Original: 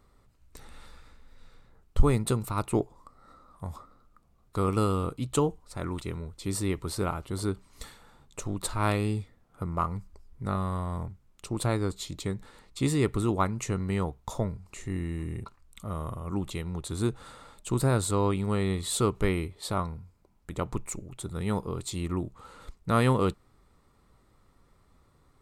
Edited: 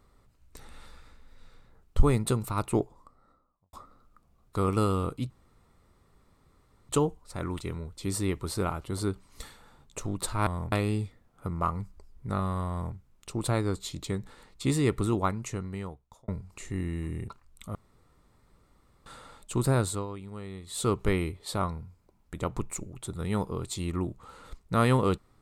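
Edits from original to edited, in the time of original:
0:02.74–0:03.73: fade out and dull
0:05.30: splice in room tone 1.59 s
0:10.86–0:11.11: duplicate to 0:08.88
0:13.24–0:14.44: fade out linear
0:15.91–0:17.22: fill with room tone
0:17.87–0:19.18: duck −13 dB, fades 0.36 s equal-power

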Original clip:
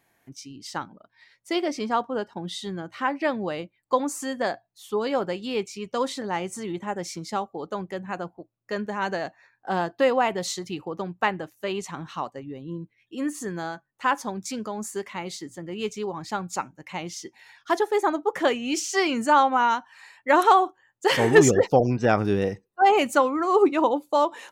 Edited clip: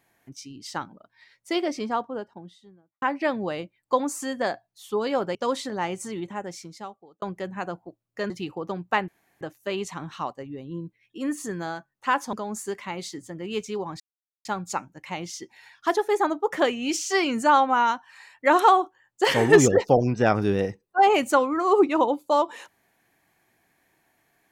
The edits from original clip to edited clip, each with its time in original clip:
0:01.54–0:03.02: fade out and dull
0:05.35–0:05.87: remove
0:06.56–0:07.74: fade out linear
0:08.82–0:10.60: remove
0:11.38: splice in room tone 0.33 s
0:14.30–0:14.61: remove
0:16.28: splice in silence 0.45 s

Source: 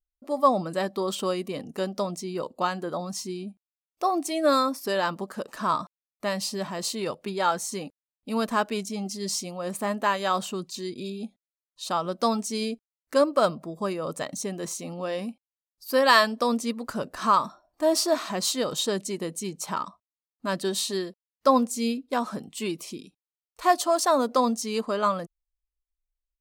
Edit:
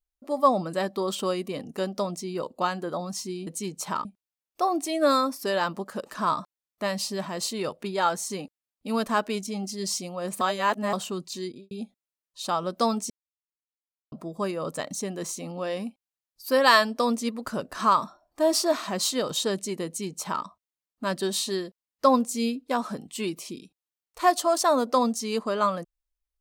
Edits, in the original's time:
0:09.83–0:10.35: reverse
0:10.85–0:11.13: fade out and dull
0:12.52–0:13.54: silence
0:19.28–0:19.86: duplicate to 0:03.47

